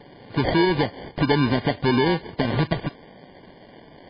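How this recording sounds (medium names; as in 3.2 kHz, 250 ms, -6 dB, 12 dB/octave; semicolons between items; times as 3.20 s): aliases and images of a low sample rate 1.3 kHz, jitter 0%; MP3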